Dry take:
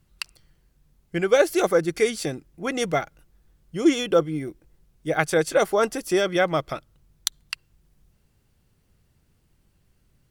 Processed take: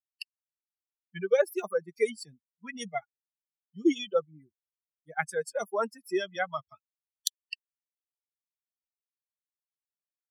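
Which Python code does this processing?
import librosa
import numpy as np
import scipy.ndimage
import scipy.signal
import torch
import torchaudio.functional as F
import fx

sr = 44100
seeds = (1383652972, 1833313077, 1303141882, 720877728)

y = fx.bin_expand(x, sr, power=3.0)
y = scipy.signal.sosfilt(scipy.signal.butter(4, 190.0, 'highpass', fs=sr, output='sos'), y)
y = y * librosa.db_to_amplitude(-2.5)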